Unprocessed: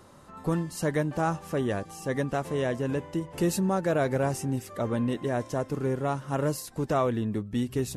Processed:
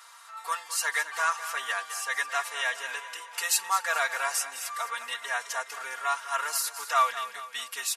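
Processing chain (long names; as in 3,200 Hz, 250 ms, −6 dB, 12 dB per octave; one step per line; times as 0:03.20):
high-pass filter 1,100 Hz 24 dB per octave
comb filter 4.3 ms, depth 97%
on a send: repeating echo 211 ms, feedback 48%, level −12.5 dB
on the sum: level +7 dB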